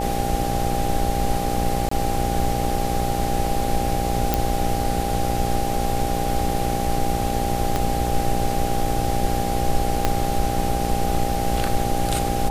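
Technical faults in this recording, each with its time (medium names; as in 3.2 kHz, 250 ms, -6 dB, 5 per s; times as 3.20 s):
buzz 60 Hz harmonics 14 -26 dBFS
whine 800 Hz -26 dBFS
1.89–1.91 s: dropout 24 ms
4.34 s: pop
7.76 s: pop -8 dBFS
10.05 s: pop -4 dBFS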